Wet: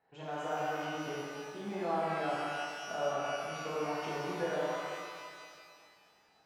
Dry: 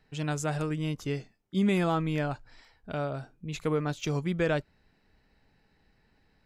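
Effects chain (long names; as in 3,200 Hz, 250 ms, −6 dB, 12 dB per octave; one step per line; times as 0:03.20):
downward compressor, threshold −30 dBFS, peak gain reduction 8.5 dB
resonant band-pass 800 Hz, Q 2
reverb with rising layers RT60 2.1 s, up +12 semitones, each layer −8 dB, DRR −8 dB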